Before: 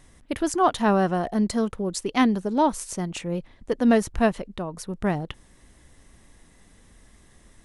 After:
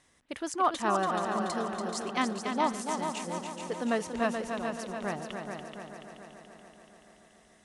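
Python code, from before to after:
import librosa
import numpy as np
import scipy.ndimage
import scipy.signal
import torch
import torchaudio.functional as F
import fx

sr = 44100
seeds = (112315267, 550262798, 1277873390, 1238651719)

y = fx.highpass(x, sr, hz=140.0, slope=6)
y = fx.low_shelf(y, sr, hz=470.0, db=-8.0)
y = fx.echo_feedback(y, sr, ms=512, feedback_pct=58, wet_db=-20)
y = fx.dynamic_eq(y, sr, hz=1200.0, q=6.9, threshold_db=-44.0, ratio=4.0, max_db=7)
y = scipy.signal.sosfilt(scipy.signal.butter(2, 9000.0, 'lowpass', fs=sr, output='sos'), y)
y = fx.echo_heads(y, sr, ms=143, heads='second and third', feedback_pct=60, wet_db=-6.5)
y = F.gain(torch.from_numpy(y), -5.5).numpy()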